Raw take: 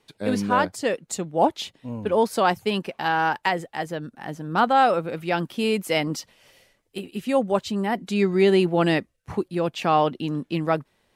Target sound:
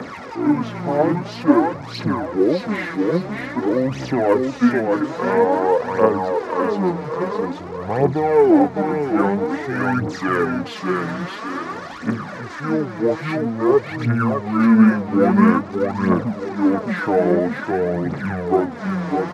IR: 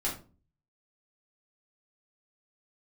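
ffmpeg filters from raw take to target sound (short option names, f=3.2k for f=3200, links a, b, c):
-filter_complex "[0:a]aeval=exprs='val(0)+0.5*0.0355*sgn(val(0))':c=same,acrossover=split=420|2800[a][b][c];[b]alimiter=limit=-15.5dB:level=0:latency=1:release=111[d];[a][d][c]amix=inputs=3:normalize=0,highpass=300,lowpass=4.9k,asplit=2[e][f];[f]aecho=0:1:351|702|1053|1404|1755:0.631|0.259|0.106|0.0435|0.0178[g];[e][g]amix=inputs=2:normalize=0,aphaser=in_gain=1:out_gain=1:delay=3.9:decay=0.63:speed=0.86:type=triangular,lowshelf=f=430:g=-7.5,bandreject=f=2.7k:w=20,asetrate=25442,aresample=44100,equalizer=f=2.9k:t=o:w=1:g=-13,volume=6dB"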